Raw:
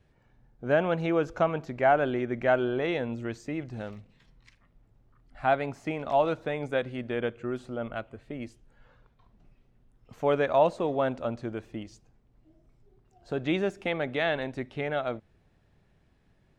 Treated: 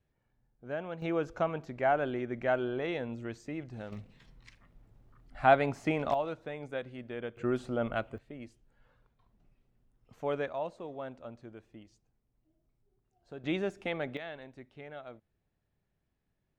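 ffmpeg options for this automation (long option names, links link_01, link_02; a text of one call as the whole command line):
ffmpeg -i in.wav -af "asetnsamples=nb_out_samples=441:pad=0,asendcmd='1.02 volume volume -5.5dB;3.92 volume volume 2dB;6.14 volume volume -9dB;7.37 volume volume 2dB;8.18 volume volume -8dB;10.49 volume volume -14dB;13.44 volume volume -5dB;14.17 volume volume -15.5dB',volume=-13dB" out.wav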